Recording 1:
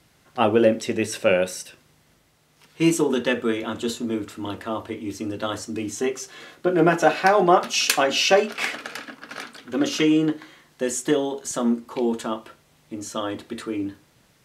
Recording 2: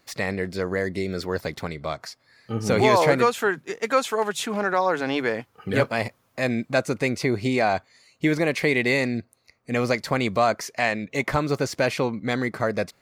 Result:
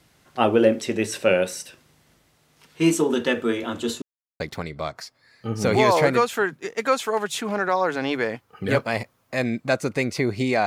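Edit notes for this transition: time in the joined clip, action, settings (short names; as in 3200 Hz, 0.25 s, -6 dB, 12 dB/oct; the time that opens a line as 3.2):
recording 1
4.02–4.4 mute
4.4 switch to recording 2 from 1.45 s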